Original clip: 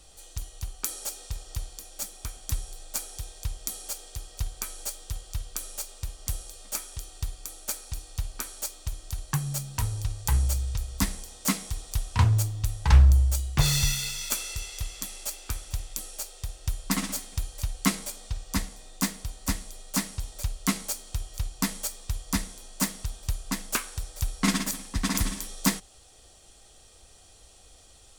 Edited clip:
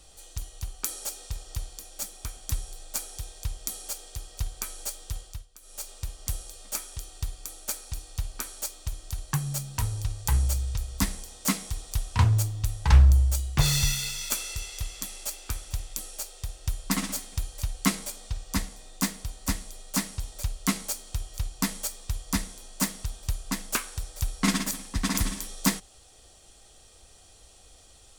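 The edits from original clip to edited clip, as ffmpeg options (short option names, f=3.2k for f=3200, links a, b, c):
-filter_complex "[0:a]asplit=3[a][b][c];[a]atrim=end=5.47,asetpts=PTS-STARTPTS,afade=t=out:st=5.2:d=0.27:silence=0.133352[d];[b]atrim=start=5.47:end=5.61,asetpts=PTS-STARTPTS,volume=-17.5dB[e];[c]atrim=start=5.61,asetpts=PTS-STARTPTS,afade=t=in:d=0.27:silence=0.133352[f];[d][e][f]concat=n=3:v=0:a=1"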